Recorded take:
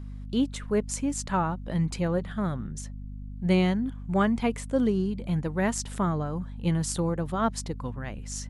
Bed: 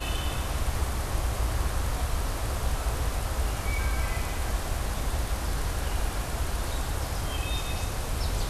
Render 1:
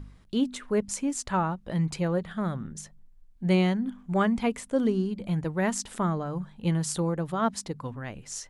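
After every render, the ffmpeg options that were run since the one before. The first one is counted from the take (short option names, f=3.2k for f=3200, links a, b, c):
-af "bandreject=f=50:t=h:w=4,bandreject=f=100:t=h:w=4,bandreject=f=150:t=h:w=4,bandreject=f=200:t=h:w=4,bandreject=f=250:t=h:w=4"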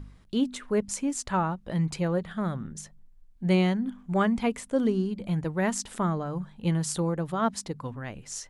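-af anull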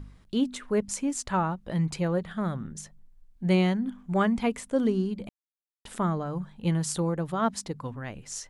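-filter_complex "[0:a]asplit=3[a][b][c];[a]atrim=end=5.29,asetpts=PTS-STARTPTS,afade=t=out:st=5.286:d=0.004:c=hsin[d];[b]atrim=start=5.29:end=5.85,asetpts=PTS-STARTPTS,volume=0[e];[c]atrim=start=5.85,asetpts=PTS-STARTPTS,afade=t=in:d=0.004:c=hsin[f];[d][e][f]concat=n=3:v=0:a=1"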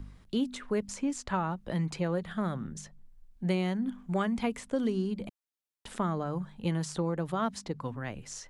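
-filter_complex "[0:a]acrossover=split=180|2000|7000[a][b][c][d];[a]acompressor=threshold=-39dB:ratio=4[e];[b]acompressor=threshold=-28dB:ratio=4[f];[c]acompressor=threshold=-42dB:ratio=4[g];[d]acompressor=threshold=-56dB:ratio=4[h];[e][f][g][h]amix=inputs=4:normalize=0"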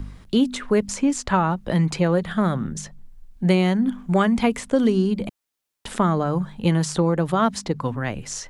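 -af "volume=11dB"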